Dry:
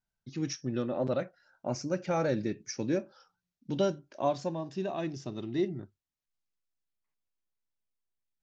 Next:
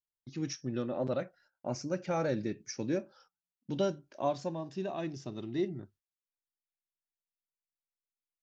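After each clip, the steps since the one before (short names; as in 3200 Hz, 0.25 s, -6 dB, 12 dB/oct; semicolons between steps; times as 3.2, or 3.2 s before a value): gate -60 dBFS, range -17 dB; gain -2.5 dB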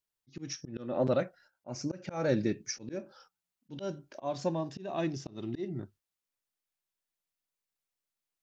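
auto swell 0.226 s; gain +5 dB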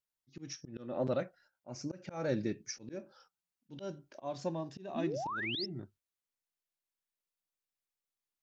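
painted sound rise, 4.95–5.66, 210–5500 Hz -33 dBFS; gain -5 dB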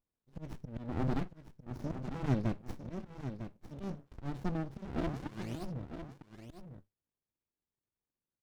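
echo 0.952 s -10 dB; running maximum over 65 samples; gain +3 dB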